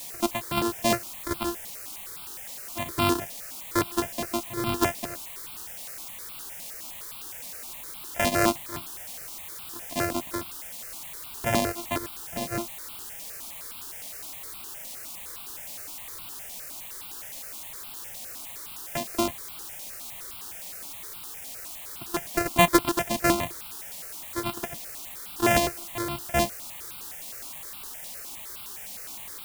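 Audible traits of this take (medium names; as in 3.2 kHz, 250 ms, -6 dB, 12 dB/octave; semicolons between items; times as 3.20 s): a buzz of ramps at a fixed pitch in blocks of 128 samples; random-step tremolo, depth 75%; a quantiser's noise floor 8-bit, dither triangular; notches that jump at a steady rate 9.7 Hz 380–1800 Hz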